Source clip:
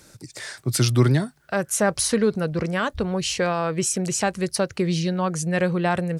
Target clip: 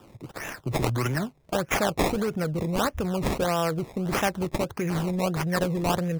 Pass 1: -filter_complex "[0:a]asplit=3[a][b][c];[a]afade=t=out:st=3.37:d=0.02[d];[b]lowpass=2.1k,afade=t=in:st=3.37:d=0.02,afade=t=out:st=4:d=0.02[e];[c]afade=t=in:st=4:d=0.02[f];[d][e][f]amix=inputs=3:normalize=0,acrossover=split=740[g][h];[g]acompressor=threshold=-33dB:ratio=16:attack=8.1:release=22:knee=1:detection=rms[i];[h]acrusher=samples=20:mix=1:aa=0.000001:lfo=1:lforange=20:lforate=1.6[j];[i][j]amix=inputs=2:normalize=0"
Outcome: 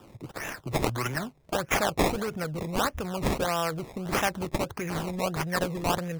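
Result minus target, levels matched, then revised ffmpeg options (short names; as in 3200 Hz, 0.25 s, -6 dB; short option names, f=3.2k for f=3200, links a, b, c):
compressor: peak gain reduction +6.5 dB
-filter_complex "[0:a]asplit=3[a][b][c];[a]afade=t=out:st=3.37:d=0.02[d];[b]lowpass=2.1k,afade=t=in:st=3.37:d=0.02,afade=t=out:st=4:d=0.02[e];[c]afade=t=in:st=4:d=0.02[f];[d][e][f]amix=inputs=3:normalize=0,acrossover=split=740[g][h];[g]acompressor=threshold=-26dB:ratio=16:attack=8.1:release=22:knee=1:detection=rms[i];[h]acrusher=samples=20:mix=1:aa=0.000001:lfo=1:lforange=20:lforate=1.6[j];[i][j]amix=inputs=2:normalize=0"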